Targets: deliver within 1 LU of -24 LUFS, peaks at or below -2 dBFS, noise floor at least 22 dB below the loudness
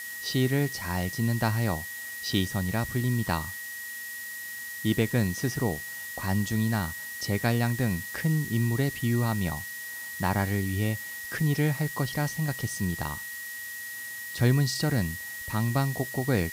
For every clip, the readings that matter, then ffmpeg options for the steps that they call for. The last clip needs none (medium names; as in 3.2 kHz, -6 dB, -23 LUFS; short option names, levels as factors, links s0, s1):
steady tone 1.9 kHz; tone level -37 dBFS; noise floor -38 dBFS; noise floor target -51 dBFS; loudness -29.0 LUFS; peak level -13.0 dBFS; loudness target -24.0 LUFS
-> -af "bandreject=f=1900:w=30"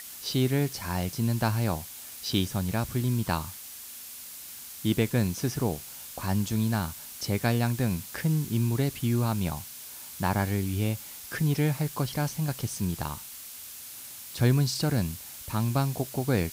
steady tone not found; noise floor -43 dBFS; noise floor target -51 dBFS
-> -af "afftdn=nr=8:nf=-43"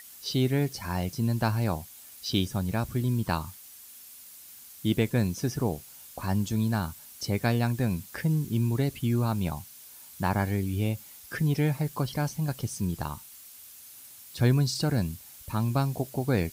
noise floor -49 dBFS; noise floor target -51 dBFS
-> -af "afftdn=nr=6:nf=-49"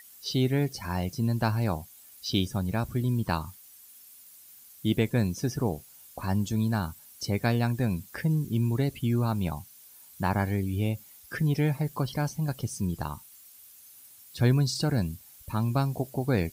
noise floor -53 dBFS; loudness -29.0 LUFS; peak level -13.5 dBFS; loudness target -24.0 LUFS
-> -af "volume=1.78"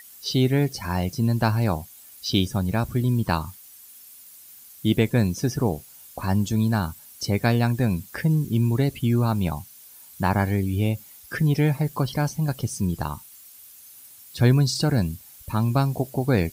loudness -24.0 LUFS; peak level -8.5 dBFS; noise floor -48 dBFS